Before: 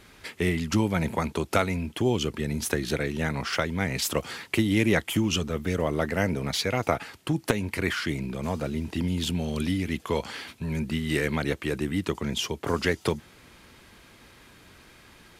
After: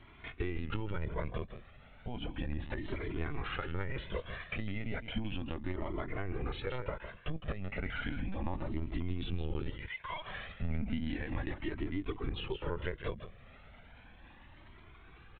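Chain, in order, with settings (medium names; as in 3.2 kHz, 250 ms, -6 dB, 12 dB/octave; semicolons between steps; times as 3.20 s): 9.70–10.27 s: elliptic high-pass 650 Hz, stop band 40 dB; compression 12:1, threshold -29 dBFS, peak gain reduction 13.5 dB; 1.49–2.07 s: room tone; distance through air 220 m; delay 160 ms -10 dB; LPC vocoder at 8 kHz pitch kept; Shepard-style flanger rising 0.34 Hz; trim +1.5 dB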